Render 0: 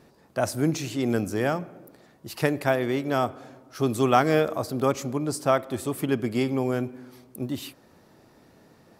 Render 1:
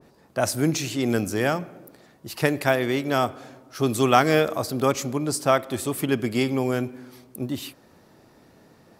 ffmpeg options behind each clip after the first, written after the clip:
ffmpeg -i in.wav -af "adynamicequalizer=threshold=0.0141:dfrequency=1600:dqfactor=0.7:tfrequency=1600:tqfactor=0.7:attack=5:release=100:ratio=0.375:range=2.5:mode=boostabove:tftype=highshelf,volume=1.5dB" out.wav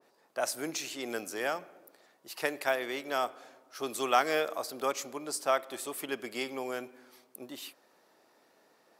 ffmpeg -i in.wav -af "highpass=480,volume=-7dB" out.wav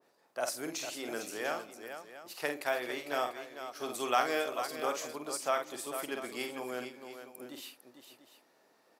ffmpeg -i in.wav -af "aecho=1:1:48|451|694:0.473|0.355|0.188,volume=-3.5dB" out.wav

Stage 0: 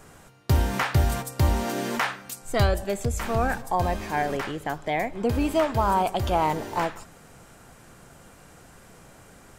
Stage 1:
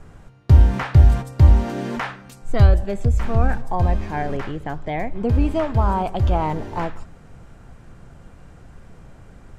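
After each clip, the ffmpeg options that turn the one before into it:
ffmpeg -i in.wav -af "aemphasis=mode=reproduction:type=bsi,volume=-1dB" out.wav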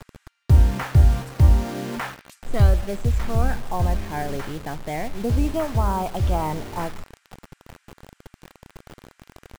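ffmpeg -i in.wav -filter_complex "[0:a]acrossover=split=1500[link_01][link_02];[link_01]acrusher=bits=5:mix=0:aa=0.000001[link_03];[link_02]aecho=1:1:157|314|471:0.0944|0.0387|0.0159[link_04];[link_03][link_04]amix=inputs=2:normalize=0,volume=-3dB" out.wav

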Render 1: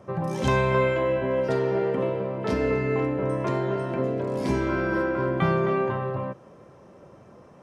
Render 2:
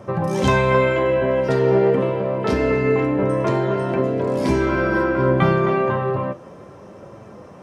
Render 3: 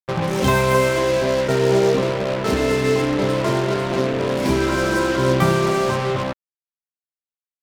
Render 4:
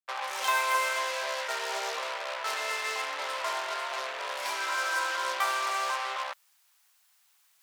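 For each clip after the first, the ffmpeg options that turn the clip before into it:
ffmpeg -i in.wav -filter_complex "[0:a]asplit=2[link_01][link_02];[link_02]acompressor=threshold=-31dB:ratio=6,volume=-2.5dB[link_03];[link_01][link_03]amix=inputs=2:normalize=0,flanger=delay=8.8:depth=6.7:regen=63:speed=0.28:shape=triangular,volume=8.5dB" out.wav
ffmpeg -i in.wav -af "acrusher=bits=3:mix=0:aa=0.5,aeval=exprs='sgn(val(0))*max(abs(val(0))-0.00668,0)':channel_layout=same" out.wav
ffmpeg -i in.wav -af "areverse,acompressor=mode=upward:threshold=-33dB:ratio=2.5,areverse,highpass=frequency=790:width=0.5412,highpass=frequency=790:width=1.3066,volume=-5dB" out.wav

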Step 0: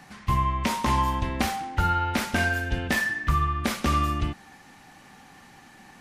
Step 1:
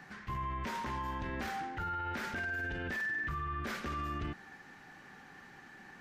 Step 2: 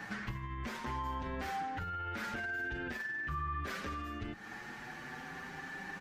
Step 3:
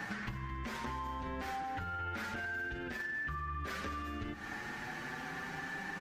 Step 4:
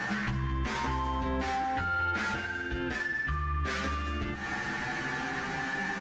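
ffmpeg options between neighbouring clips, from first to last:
ffmpeg -i in.wav -af "equalizer=frequency=160:width_type=o:width=0.67:gain=3,equalizer=frequency=400:width_type=o:width=0.67:gain=7,equalizer=frequency=1600:width_type=o:width=0.67:gain=10,equalizer=frequency=10000:width_type=o:width=0.67:gain=-9,alimiter=limit=-22.5dB:level=0:latency=1:release=20,volume=-8dB" out.wav
ffmpeg -i in.wav -filter_complex "[0:a]acompressor=threshold=-45dB:ratio=10,asplit=2[link_01][link_02];[link_02]adelay=6.8,afreqshift=0.47[link_03];[link_01][link_03]amix=inputs=2:normalize=1,volume=11.5dB" out.wav
ffmpeg -i in.wav -af "acompressor=threshold=-41dB:ratio=6,aecho=1:1:218|436|654|872|1090:0.211|0.108|0.055|0.028|0.0143,volume=4dB" out.wav
ffmpeg -i in.wav -filter_complex "[0:a]asplit=2[link_01][link_02];[link_02]adelay=15,volume=-3dB[link_03];[link_01][link_03]amix=inputs=2:normalize=0,aresample=16000,aresample=44100,asoftclip=type=tanh:threshold=-29.5dB,volume=7.5dB" out.wav

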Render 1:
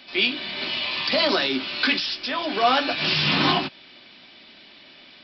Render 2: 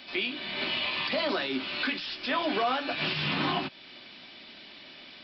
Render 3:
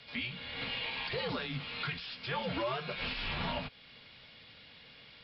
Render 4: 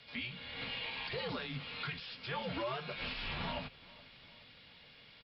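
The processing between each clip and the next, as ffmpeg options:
ffmpeg -i in.wav -filter_complex "[0:a]alimiter=limit=-18dB:level=0:latency=1:release=432,acrossover=split=3900[link_01][link_02];[link_02]acompressor=threshold=-50dB:ratio=4:attack=1:release=60[link_03];[link_01][link_03]amix=inputs=2:normalize=0" out.wav
ffmpeg -i in.wav -af "afreqshift=-120,volume=-7dB" out.wav
ffmpeg -i in.wav -af "aecho=1:1:421|842|1263|1684:0.0794|0.0461|0.0267|0.0155,volume=-3.5dB" out.wav

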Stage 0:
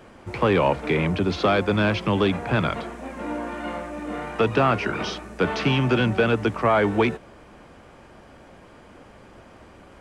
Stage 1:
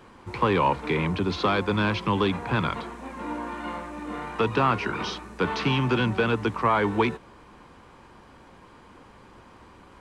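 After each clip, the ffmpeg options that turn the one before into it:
ffmpeg -i in.wav -af "equalizer=frequency=630:width_type=o:width=0.33:gain=-8,equalizer=frequency=1000:width_type=o:width=0.33:gain=8,equalizer=frequency=4000:width_type=o:width=0.33:gain=4,volume=-3dB" out.wav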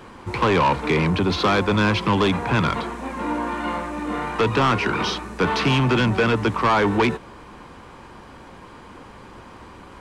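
ffmpeg -i in.wav -af "asoftclip=type=tanh:threshold=-21dB,volume=8dB" out.wav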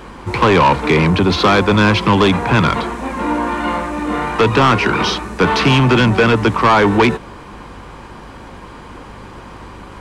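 ffmpeg -i in.wav -af "aeval=exprs='val(0)+0.00447*(sin(2*PI*50*n/s)+sin(2*PI*2*50*n/s)/2+sin(2*PI*3*50*n/s)/3+sin(2*PI*4*50*n/s)/4+sin(2*PI*5*50*n/s)/5)':channel_layout=same,volume=7dB" out.wav

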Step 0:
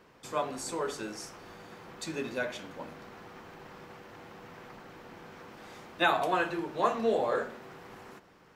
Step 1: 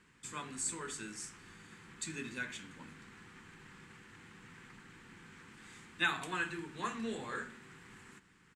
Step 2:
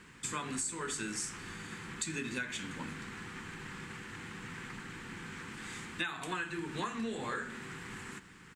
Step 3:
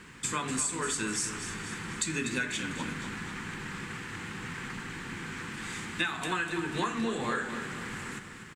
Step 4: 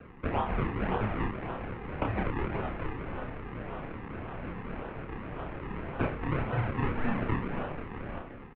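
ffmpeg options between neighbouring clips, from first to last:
ffmpeg -i in.wav -af "firequalizer=gain_entry='entry(200,0);entry(410,-9);entry(610,-22);entry(900,-9);entry(1700,2);entry(5500,-3);entry(7800,10);entry(14000,-14)':delay=0.05:min_phase=1,volume=-3.5dB" out.wav
ffmpeg -i in.wav -af "acompressor=threshold=-44dB:ratio=12,volume=10.5dB" out.wav
ffmpeg -i in.wav -af "aecho=1:1:246|492|738|984|1230|1476:0.316|0.164|0.0855|0.0445|0.0231|0.012,volume=5.5dB" out.wav
ffmpeg -i in.wav -filter_complex "[0:a]acrusher=samples=36:mix=1:aa=0.000001:lfo=1:lforange=36:lforate=1.8,asplit=2[link_01][link_02];[link_02]adelay=30,volume=-4dB[link_03];[link_01][link_03]amix=inputs=2:normalize=0,highpass=frequency=220:width_type=q:width=0.5412,highpass=frequency=220:width_type=q:width=1.307,lowpass=frequency=2700:width_type=q:width=0.5176,lowpass=frequency=2700:width_type=q:width=0.7071,lowpass=frequency=2700:width_type=q:width=1.932,afreqshift=-220,volume=2.5dB" out.wav

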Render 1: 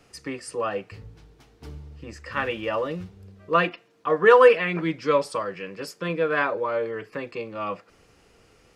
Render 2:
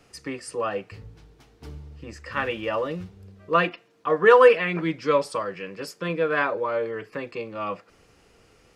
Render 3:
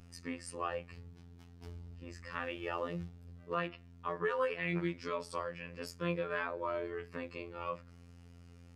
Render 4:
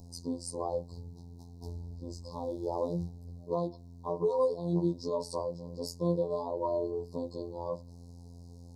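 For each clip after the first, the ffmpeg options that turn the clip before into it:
ffmpeg -i in.wav -af anull out.wav
ffmpeg -i in.wav -af "aeval=exprs='val(0)+0.00708*(sin(2*PI*50*n/s)+sin(2*PI*2*50*n/s)/2+sin(2*PI*3*50*n/s)/3+sin(2*PI*4*50*n/s)/4+sin(2*PI*5*50*n/s)/5)':channel_layout=same,alimiter=limit=-16dB:level=0:latency=1:release=266,afftfilt=real='hypot(re,im)*cos(PI*b)':imag='0':win_size=2048:overlap=0.75,volume=-5.5dB" out.wav
ffmpeg -i in.wav -af "asuperstop=centerf=2000:order=20:qfactor=0.69,volume=6.5dB" out.wav

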